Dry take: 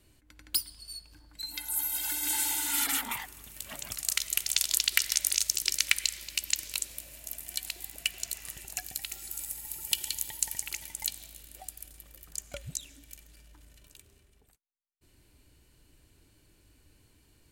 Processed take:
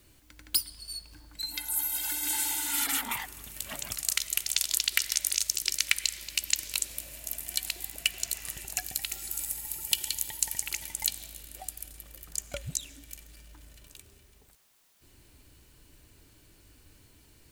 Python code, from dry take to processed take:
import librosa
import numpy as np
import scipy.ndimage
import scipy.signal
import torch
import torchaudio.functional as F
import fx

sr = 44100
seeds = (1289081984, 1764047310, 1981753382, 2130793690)

p1 = fx.rider(x, sr, range_db=4, speed_s=0.5)
p2 = x + (p1 * librosa.db_to_amplitude(2.5))
p3 = fx.quant_dither(p2, sr, seeds[0], bits=10, dither='triangular')
y = p3 * librosa.db_to_amplitude(-6.0)